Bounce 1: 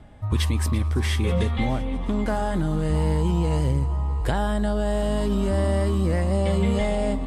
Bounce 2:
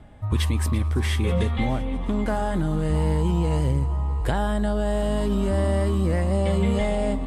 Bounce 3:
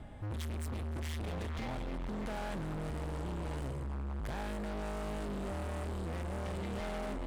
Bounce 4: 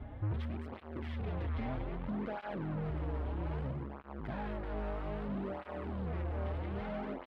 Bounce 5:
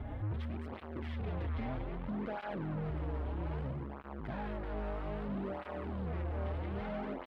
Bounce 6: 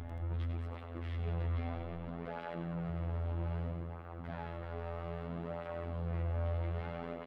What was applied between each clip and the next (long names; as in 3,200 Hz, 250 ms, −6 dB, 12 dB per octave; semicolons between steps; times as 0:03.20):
parametric band 5,200 Hz −3 dB 0.77 octaves
brickwall limiter −19.5 dBFS, peak gain reduction 8.5 dB; hard clipping −35.5 dBFS, distortion −6 dB; level −1.5 dB
speech leveller 0.5 s; high-frequency loss of the air 390 metres; through-zero flanger with one copy inverted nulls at 0.62 Hz, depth 6.2 ms; level +4 dB
brickwall limiter −40 dBFS, peak gain reduction 9 dB; level +6.5 dB
phases set to zero 84.7 Hz; multi-tap delay 96/179 ms −9/−12.5 dB